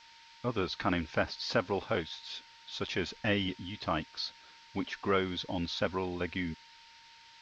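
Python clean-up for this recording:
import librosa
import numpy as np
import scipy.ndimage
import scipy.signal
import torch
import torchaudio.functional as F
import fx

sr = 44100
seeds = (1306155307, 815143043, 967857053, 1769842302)

y = fx.notch(x, sr, hz=920.0, q=30.0)
y = fx.noise_reduce(y, sr, print_start_s=6.83, print_end_s=7.33, reduce_db=22.0)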